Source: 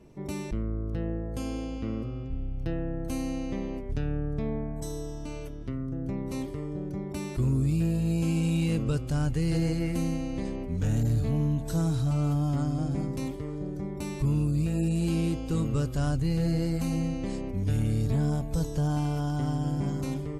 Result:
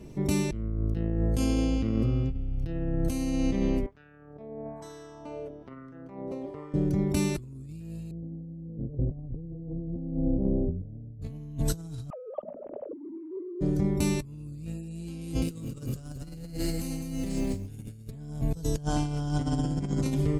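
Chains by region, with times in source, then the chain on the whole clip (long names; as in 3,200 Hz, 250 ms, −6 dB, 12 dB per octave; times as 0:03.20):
0:03.86–0:06.74: compressor whose output falls as the input rises −33 dBFS, ratio −0.5 + LFO wah 1.1 Hz 580–1,500 Hz, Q 2.1
0:08.11–0:11.22: Butterworth low-pass 690 Hz + single-tap delay 237 ms −19 dB
0:12.10–0:13.61: three sine waves on the formant tracks + low-pass with resonance 600 Hz, resonance Q 6.8 + mains-hum notches 60/120/180/240 Hz
0:15.21–0:18.11: high-shelf EQ 8,600 Hz +11.5 dB + feedback echo at a low word length 209 ms, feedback 35%, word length 9 bits, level −4.5 dB
0:18.83–0:20.06: low-pass filter 9,600 Hz 24 dB per octave + mains-hum notches 50/100/150/200/250/300/350/400 Hz
whole clip: parametric band 1,000 Hz −6.5 dB 2.5 octaves; compressor whose output falls as the input rises −34 dBFS, ratio −0.5; level +4.5 dB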